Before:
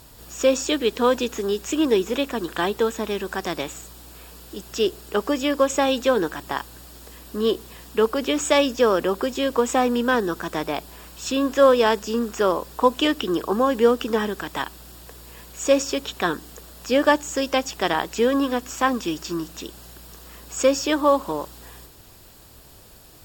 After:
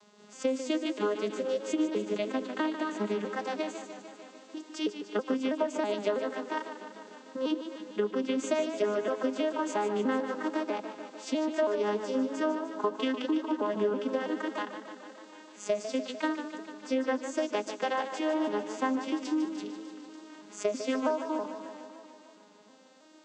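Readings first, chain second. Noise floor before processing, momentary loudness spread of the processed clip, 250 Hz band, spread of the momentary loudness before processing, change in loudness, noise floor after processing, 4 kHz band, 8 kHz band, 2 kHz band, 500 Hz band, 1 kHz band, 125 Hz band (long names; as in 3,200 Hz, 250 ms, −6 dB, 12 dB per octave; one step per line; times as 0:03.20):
−48 dBFS, 15 LU, −6.5 dB, 20 LU, −9.5 dB, −55 dBFS, −13.5 dB, −14.5 dB, −10.5 dB, −9.5 dB, −10.5 dB, below −10 dB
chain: vocoder with an arpeggio as carrier major triad, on G#3, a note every 324 ms
low-shelf EQ 370 Hz −10.5 dB
downward compressor, threshold −28 dBFS, peak gain reduction 14 dB
feedback echo with a swinging delay time 149 ms, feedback 70%, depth 84 cents, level −10 dB
level +2 dB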